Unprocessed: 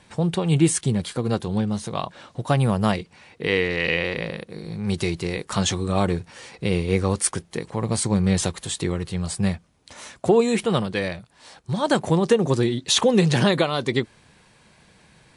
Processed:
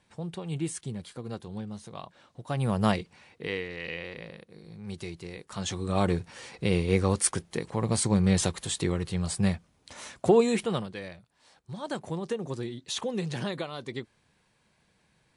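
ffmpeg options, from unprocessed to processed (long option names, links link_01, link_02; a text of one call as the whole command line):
ffmpeg -i in.wav -af "volume=8dB,afade=type=in:start_time=2.47:duration=0.41:silence=0.281838,afade=type=out:start_time=2.88:duration=0.77:silence=0.281838,afade=type=in:start_time=5.55:duration=0.56:silence=0.281838,afade=type=out:start_time=10.37:duration=0.6:silence=0.281838" out.wav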